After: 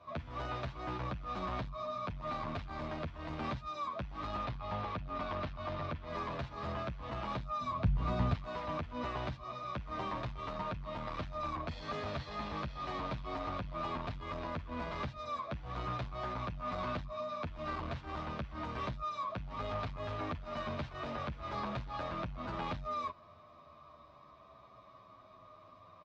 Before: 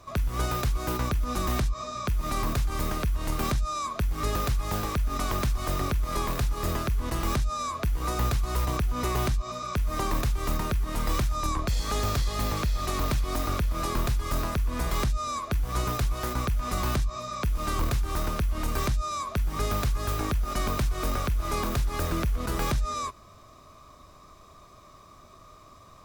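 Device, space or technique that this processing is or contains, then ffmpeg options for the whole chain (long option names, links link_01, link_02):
barber-pole flanger into a guitar amplifier: -filter_complex "[0:a]asplit=2[link_01][link_02];[link_02]adelay=9.7,afreqshift=-0.34[link_03];[link_01][link_03]amix=inputs=2:normalize=1,asoftclip=type=tanh:threshold=-26dB,highpass=88,equalizer=frequency=390:width_type=q:width=4:gain=-5,equalizer=frequency=630:width_type=q:width=4:gain=6,equalizer=frequency=940:width_type=q:width=4:gain=5,lowpass=frequency=3900:width=0.5412,lowpass=frequency=3900:width=1.3066,asettb=1/sr,asplit=3[link_04][link_05][link_06];[link_04]atrim=end=4.444[link_07];[link_05]atrim=start=4.44:end=6.1,asetpts=PTS-STARTPTS,afade=type=in:duration=0.004:curve=qsin,afade=type=out:start_time=1.656:duration=0.004:curve=qsin,lowpass=5400[link_08];[link_06]atrim=start=6.096[link_09];[link_07][link_08]acrossfade=duration=0.004:curve1=hsin:curve2=qsin[link_10];[link_10][link_09]acrossfade=duration=0.004:curve1=qsin:curve2=hsin,asettb=1/sr,asplit=3[link_11][link_12][link_13];[link_11]atrim=end=7.614[link_14];[link_12]atrim=start=7.61:end=8.34,asetpts=PTS-STARTPTS,afade=type=in:duration=0.004:curve=qsin,afade=type=out:start_time=0.726:duration=0.004:curve=qsin,bass=frequency=250:gain=14,treble=frequency=4000:gain=1[link_15];[link_13]atrim=start=8.336[link_16];[link_14][link_15]acrossfade=duration=0.004:curve1=hsin:curve2=qsin[link_17];[link_17][link_16]acrossfade=duration=0.004:curve1=qsin:curve2=hsin,volume=-4dB"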